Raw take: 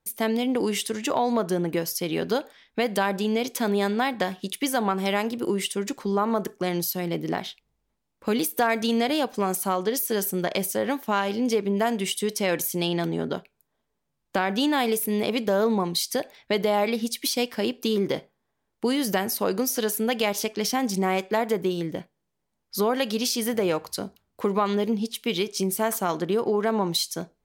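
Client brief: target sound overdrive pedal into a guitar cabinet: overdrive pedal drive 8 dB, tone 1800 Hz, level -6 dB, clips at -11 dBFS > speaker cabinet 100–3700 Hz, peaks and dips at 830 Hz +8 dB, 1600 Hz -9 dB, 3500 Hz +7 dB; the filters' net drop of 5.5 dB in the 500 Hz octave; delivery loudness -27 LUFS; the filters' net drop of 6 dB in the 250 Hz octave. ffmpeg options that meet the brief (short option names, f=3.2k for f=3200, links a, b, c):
-filter_complex "[0:a]equalizer=f=250:t=o:g=-6,equalizer=f=500:t=o:g=-6,asplit=2[a][b];[b]highpass=f=720:p=1,volume=8dB,asoftclip=type=tanh:threshold=-11dB[c];[a][c]amix=inputs=2:normalize=0,lowpass=f=1.8k:p=1,volume=-6dB,highpass=100,equalizer=f=830:t=q:w=4:g=8,equalizer=f=1.6k:t=q:w=4:g=-9,equalizer=f=3.5k:t=q:w=4:g=7,lowpass=f=3.7k:w=0.5412,lowpass=f=3.7k:w=1.3066,volume=2dB"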